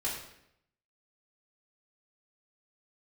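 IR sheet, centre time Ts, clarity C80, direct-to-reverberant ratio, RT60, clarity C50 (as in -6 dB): 44 ms, 6.5 dB, -8.0 dB, 0.75 s, 3.5 dB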